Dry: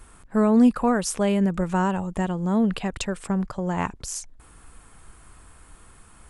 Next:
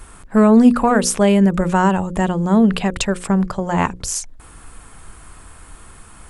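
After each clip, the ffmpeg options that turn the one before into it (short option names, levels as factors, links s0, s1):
-af "acontrast=61,bandreject=f=60:t=h:w=6,bandreject=f=120:t=h:w=6,bandreject=f=180:t=h:w=6,bandreject=f=240:t=h:w=6,bandreject=f=300:t=h:w=6,bandreject=f=360:t=h:w=6,bandreject=f=420:t=h:w=6,bandreject=f=480:t=h:w=6,bandreject=f=540:t=h:w=6,volume=1.33"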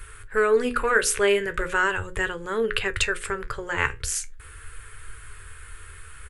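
-af "firequalizer=gain_entry='entry(120,0);entry(190,-28);entry(430,0);entry(670,-19);entry(1500,5);entry(3000,1);entry(5500,-6);entry(11000,0)':delay=0.05:min_phase=1,flanger=delay=8.6:depth=6.5:regen=64:speed=0.39:shape=triangular,volume=1.5"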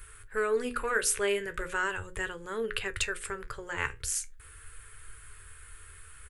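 -af "highshelf=f=7300:g=8.5,volume=0.376"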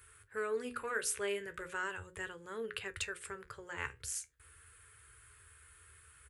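-af "highpass=f=57:w=0.5412,highpass=f=57:w=1.3066,volume=0.398"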